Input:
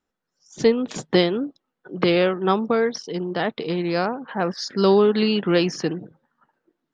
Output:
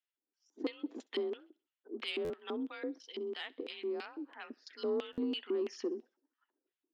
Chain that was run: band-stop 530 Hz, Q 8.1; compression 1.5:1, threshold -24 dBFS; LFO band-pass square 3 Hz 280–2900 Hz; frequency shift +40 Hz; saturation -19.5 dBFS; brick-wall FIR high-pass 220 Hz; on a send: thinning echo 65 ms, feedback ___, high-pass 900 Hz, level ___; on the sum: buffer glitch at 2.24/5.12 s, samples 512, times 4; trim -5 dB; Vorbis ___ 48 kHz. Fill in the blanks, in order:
52%, -24 dB, 192 kbps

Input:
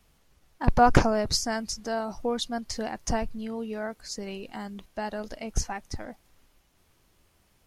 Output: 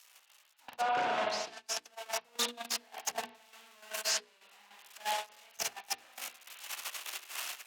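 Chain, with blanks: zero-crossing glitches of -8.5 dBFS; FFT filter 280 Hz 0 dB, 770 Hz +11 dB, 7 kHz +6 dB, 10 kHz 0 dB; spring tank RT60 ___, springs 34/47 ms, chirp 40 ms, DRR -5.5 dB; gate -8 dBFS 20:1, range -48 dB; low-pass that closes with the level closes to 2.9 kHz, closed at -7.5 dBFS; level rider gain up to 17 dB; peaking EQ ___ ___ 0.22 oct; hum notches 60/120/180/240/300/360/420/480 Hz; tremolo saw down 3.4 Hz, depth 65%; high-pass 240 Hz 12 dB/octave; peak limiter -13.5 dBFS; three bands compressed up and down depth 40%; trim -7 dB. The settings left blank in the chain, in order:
1.3 s, 2.7 kHz, +4 dB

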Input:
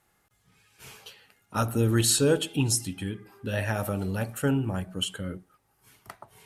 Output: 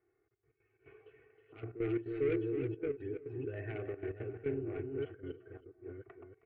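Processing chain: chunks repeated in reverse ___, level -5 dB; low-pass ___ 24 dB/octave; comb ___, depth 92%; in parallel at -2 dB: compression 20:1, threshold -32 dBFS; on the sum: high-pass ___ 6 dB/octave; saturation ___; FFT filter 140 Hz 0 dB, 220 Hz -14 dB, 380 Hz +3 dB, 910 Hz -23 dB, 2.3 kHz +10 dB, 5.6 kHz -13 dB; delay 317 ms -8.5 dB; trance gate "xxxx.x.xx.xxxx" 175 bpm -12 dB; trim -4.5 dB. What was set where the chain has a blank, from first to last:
431 ms, 1.1 kHz, 2.7 ms, 420 Hz, -21.5 dBFS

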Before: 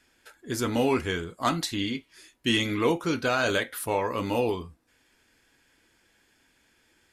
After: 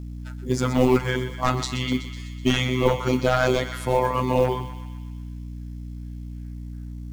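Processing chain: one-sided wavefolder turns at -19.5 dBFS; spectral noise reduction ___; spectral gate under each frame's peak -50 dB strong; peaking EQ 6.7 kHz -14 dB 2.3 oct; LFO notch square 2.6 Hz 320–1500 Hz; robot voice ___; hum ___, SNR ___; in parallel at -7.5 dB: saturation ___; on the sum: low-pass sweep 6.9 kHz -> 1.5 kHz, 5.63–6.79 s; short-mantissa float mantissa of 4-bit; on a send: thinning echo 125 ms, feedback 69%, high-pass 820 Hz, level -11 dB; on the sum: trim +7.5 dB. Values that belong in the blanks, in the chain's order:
11 dB, 127 Hz, 60 Hz, 10 dB, -21 dBFS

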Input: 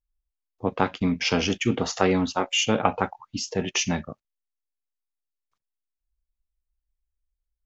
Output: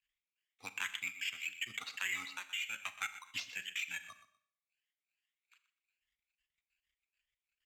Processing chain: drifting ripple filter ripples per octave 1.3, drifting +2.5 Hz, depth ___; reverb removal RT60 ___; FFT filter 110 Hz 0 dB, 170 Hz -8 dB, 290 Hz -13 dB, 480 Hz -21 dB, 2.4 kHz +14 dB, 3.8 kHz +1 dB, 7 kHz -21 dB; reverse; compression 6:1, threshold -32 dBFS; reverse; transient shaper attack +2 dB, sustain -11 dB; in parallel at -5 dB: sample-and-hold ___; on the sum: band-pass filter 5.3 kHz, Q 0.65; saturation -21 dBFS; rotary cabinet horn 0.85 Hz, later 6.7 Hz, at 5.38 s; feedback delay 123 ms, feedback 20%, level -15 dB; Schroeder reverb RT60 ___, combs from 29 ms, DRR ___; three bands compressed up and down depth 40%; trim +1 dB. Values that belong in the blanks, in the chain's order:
10 dB, 0.57 s, 9×, 0.52 s, 13 dB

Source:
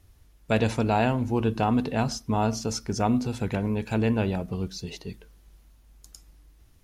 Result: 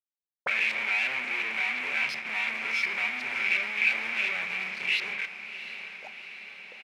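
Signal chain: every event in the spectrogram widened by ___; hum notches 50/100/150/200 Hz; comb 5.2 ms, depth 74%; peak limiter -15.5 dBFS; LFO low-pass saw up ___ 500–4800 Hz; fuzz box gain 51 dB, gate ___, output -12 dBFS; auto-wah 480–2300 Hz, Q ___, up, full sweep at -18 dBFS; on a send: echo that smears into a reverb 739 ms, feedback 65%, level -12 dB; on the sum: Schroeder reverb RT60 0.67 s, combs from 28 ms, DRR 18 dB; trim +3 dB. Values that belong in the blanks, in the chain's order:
60 ms, 2.8 Hz, -42 dBFS, 10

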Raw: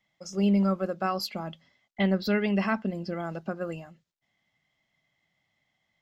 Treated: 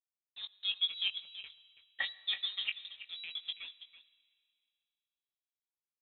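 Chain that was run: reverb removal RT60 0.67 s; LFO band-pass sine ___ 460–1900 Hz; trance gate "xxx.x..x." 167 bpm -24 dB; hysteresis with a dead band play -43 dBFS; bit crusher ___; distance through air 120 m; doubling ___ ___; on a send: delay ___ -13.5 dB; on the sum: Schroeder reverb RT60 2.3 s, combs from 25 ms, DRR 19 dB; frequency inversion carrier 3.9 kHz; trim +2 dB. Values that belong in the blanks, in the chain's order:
5.6 Hz, 10-bit, 20 ms, -6.5 dB, 329 ms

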